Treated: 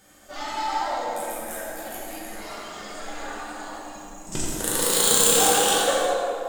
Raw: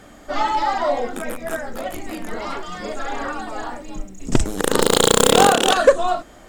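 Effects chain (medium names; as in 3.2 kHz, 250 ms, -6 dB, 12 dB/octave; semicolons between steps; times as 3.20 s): pre-emphasis filter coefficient 0.8; on a send: tape echo 87 ms, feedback 87%, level -4 dB, low-pass 2.7 kHz; on the sum: gated-style reverb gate 430 ms falling, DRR -5 dB; trim -3.5 dB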